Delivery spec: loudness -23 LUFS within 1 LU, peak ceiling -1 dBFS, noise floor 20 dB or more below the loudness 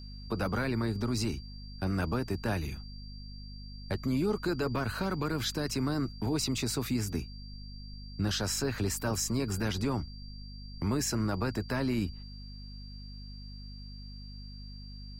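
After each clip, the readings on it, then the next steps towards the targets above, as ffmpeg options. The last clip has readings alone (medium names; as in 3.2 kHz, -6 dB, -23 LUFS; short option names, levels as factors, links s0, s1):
hum 50 Hz; highest harmonic 250 Hz; hum level -42 dBFS; steady tone 4.7 kHz; tone level -51 dBFS; loudness -32.5 LUFS; peak level -19.5 dBFS; loudness target -23.0 LUFS
-> -af "bandreject=f=50:t=h:w=4,bandreject=f=100:t=h:w=4,bandreject=f=150:t=h:w=4,bandreject=f=200:t=h:w=4,bandreject=f=250:t=h:w=4"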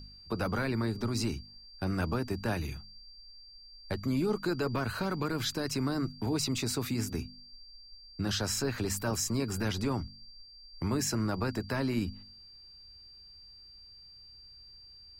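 hum not found; steady tone 4.7 kHz; tone level -51 dBFS
-> -af "bandreject=f=4700:w=30"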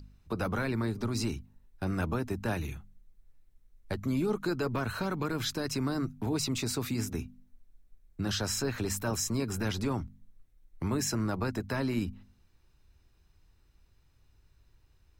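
steady tone not found; loudness -33.0 LUFS; peak level -19.5 dBFS; loudness target -23.0 LUFS
-> -af "volume=3.16"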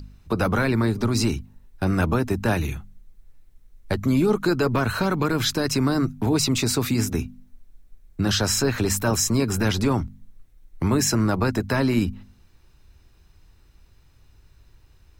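loudness -23.0 LUFS; peak level -9.5 dBFS; noise floor -56 dBFS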